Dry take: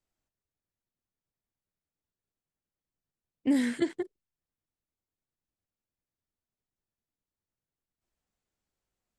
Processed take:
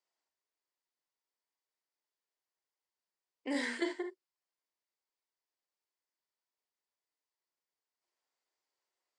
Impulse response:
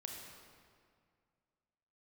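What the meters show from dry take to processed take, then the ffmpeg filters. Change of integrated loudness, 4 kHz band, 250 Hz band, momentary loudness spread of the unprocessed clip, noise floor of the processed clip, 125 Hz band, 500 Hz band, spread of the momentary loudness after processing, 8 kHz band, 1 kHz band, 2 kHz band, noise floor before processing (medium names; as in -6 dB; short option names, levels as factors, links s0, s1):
-7.5 dB, 0.0 dB, -10.5 dB, 13 LU, under -85 dBFS, under -20 dB, -4.0 dB, 10 LU, -4.0 dB, +1.0 dB, +1.5 dB, under -85 dBFS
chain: -filter_complex "[0:a]highpass=f=360:w=0.5412,highpass=f=360:w=1.3066,equalizer=f=970:t=q:w=4:g=7,equalizer=f=2000:t=q:w=4:g=5,equalizer=f=4800:t=q:w=4:g=7,lowpass=f=8800:w=0.5412,lowpass=f=8800:w=1.3066[s0];[1:a]atrim=start_sample=2205,atrim=end_sample=3528[s1];[s0][s1]afir=irnorm=-1:irlink=0,volume=1.26"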